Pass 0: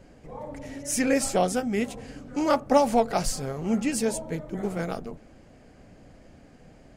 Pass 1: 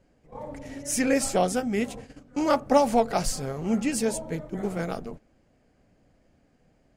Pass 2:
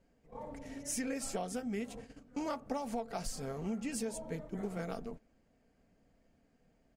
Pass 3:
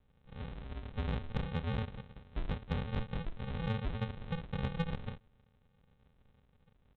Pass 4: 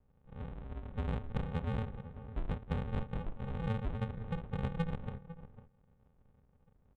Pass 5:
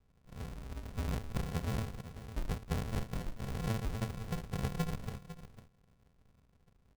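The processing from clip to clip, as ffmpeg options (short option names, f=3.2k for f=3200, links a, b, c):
-af "agate=range=-12dB:threshold=-39dB:ratio=16:detection=peak"
-af "aecho=1:1:4.4:0.31,acompressor=threshold=-26dB:ratio=12,volume=-7.5dB"
-af "aresample=8000,acrusher=samples=24:mix=1:aa=0.000001,aresample=44100,asoftclip=type=tanh:threshold=-25dB,volume=3dB"
-filter_complex "[0:a]asplit=2[a][b];[b]adelay=501.5,volume=-13dB,highshelf=f=4k:g=-11.3[c];[a][c]amix=inputs=2:normalize=0,acrossover=split=1300[d][e];[e]adynamicsmooth=sensitivity=5.5:basefreq=1.8k[f];[d][f]amix=inputs=2:normalize=0"
-af "acrusher=samples=36:mix=1:aa=0.000001"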